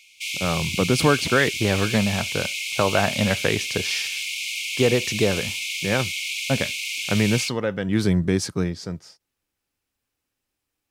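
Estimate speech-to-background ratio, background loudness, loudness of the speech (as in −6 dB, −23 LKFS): 3.0 dB, −26.5 LKFS, −23.5 LKFS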